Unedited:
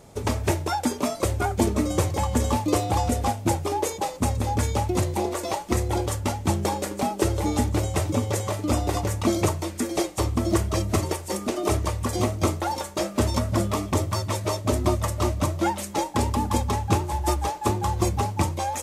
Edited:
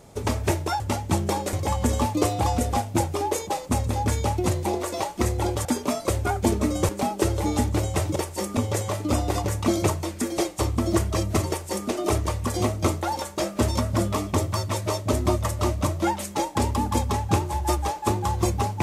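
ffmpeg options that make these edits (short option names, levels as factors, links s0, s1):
-filter_complex "[0:a]asplit=7[s0][s1][s2][s3][s4][s5][s6];[s0]atrim=end=0.802[s7];[s1]atrim=start=6.158:end=6.892[s8];[s2]atrim=start=2.038:end=6.162[s9];[s3]atrim=start=0.798:end=2.042[s10];[s4]atrim=start=6.888:end=8.162[s11];[s5]atrim=start=11.078:end=11.492[s12];[s6]atrim=start=8.158[s13];[s7][s8]acrossfade=d=0.004:c1=hsin:c2=hsin[s14];[s14][s9]acrossfade=d=0.004:c1=hsin:c2=hsin[s15];[s15][s10]acrossfade=d=0.004:c1=hsin:c2=hsin[s16];[s16][s11]acrossfade=d=0.004:c1=hsin:c2=hsin[s17];[s17][s12]acrossfade=d=0.004:c1=hsin:c2=hsin[s18];[s18][s13]acrossfade=d=0.004:c1=hsin:c2=hsin"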